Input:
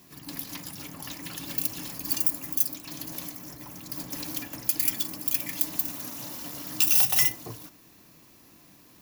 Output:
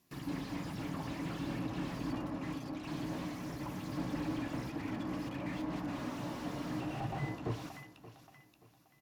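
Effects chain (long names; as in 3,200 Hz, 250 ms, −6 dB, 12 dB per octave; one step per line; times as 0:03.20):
noise gate with hold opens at −41 dBFS
treble cut that deepens with the level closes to 1,300 Hz, closed at −24.5 dBFS
dynamic equaliser 6,600 Hz, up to −5 dB, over −56 dBFS, Q 0.76
repeating echo 578 ms, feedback 33%, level −17.5 dB
slew-rate limiting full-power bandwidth 6.1 Hz
level +4.5 dB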